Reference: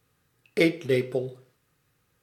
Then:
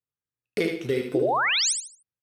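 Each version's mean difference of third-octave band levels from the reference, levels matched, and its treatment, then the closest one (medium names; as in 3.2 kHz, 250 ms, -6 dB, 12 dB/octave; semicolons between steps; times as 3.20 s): 5.0 dB: gate -53 dBFS, range -32 dB; compression, threshold -24 dBFS, peak gain reduction 8.5 dB; painted sound rise, 1.14–1.73 s, 280–9800 Hz -26 dBFS; on a send: feedback delay 75 ms, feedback 29%, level -5.5 dB; on the sum: trim +2 dB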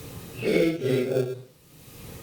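7.0 dB: phase randomisation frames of 200 ms; peaking EQ 1.5 kHz -14.5 dB 0.7 oct; in parallel at -12 dB: sample-rate reducer 1 kHz, jitter 0%; on the sum: three bands compressed up and down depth 100%; trim +1.5 dB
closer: first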